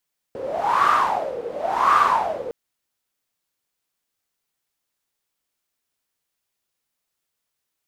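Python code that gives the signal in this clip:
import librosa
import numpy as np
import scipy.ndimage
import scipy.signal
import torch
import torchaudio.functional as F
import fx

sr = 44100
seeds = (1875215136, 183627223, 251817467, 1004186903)

y = fx.wind(sr, seeds[0], length_s=2.16, low_hz=480.0, high_hz=1200.0, q=10.0, gusts=2, swing_db=14.5)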